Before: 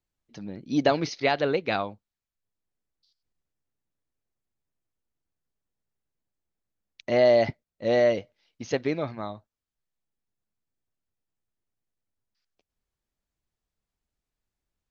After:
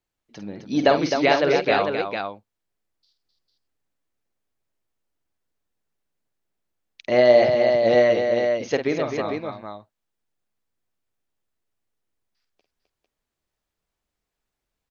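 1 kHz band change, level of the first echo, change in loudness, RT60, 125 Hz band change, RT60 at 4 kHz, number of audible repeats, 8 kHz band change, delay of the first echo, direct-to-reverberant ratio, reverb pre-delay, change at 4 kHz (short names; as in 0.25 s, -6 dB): +6.5 dB, -8.5 dB, +5.0 dB, none, +1.5 dB, none, 3, n/a, 49 ms, none, none, +5.5 dB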